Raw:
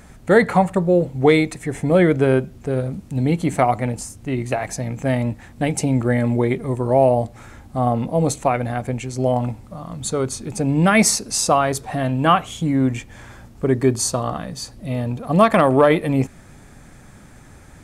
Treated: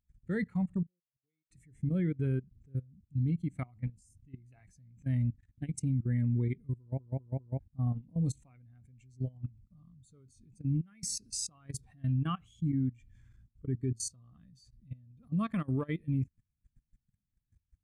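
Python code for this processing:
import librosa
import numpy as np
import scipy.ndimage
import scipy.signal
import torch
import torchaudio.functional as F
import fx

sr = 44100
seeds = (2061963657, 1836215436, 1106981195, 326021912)

y = fx.gate_flip(x, sr, shuts_db=-21.0, range_db=-39, at=(0.86, 1.51))
y = fx.over_compress(y, sr, threshold_db=-18.0, ratio=-0.5, at=(10.7, 11.94))
y = fx.edit(y, sr, fx.stutter_over(start_s=6.79, slice_s=0.2, count=4), tone=tone)
y = fx.tone_stack(y, sr, knobs='6-0-2')
y = fx.level_steps(y, sr, step_db=19)
y = fx.spectral_expand(y, sr, expansion=1.5)
y = F.gain(torch.from_numpy(y), 2.0).numpy()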